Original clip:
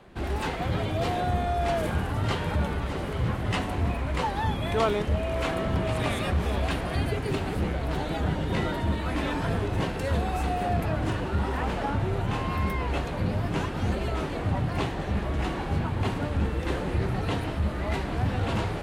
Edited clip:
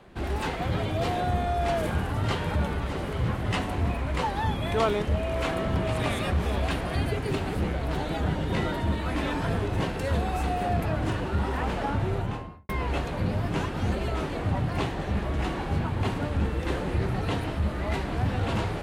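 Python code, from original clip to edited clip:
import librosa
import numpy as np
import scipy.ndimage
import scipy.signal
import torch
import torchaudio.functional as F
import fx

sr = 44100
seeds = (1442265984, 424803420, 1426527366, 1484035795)

y = fx.studio_fade_out(x, sr, start_s=12.1, length_s=0.59)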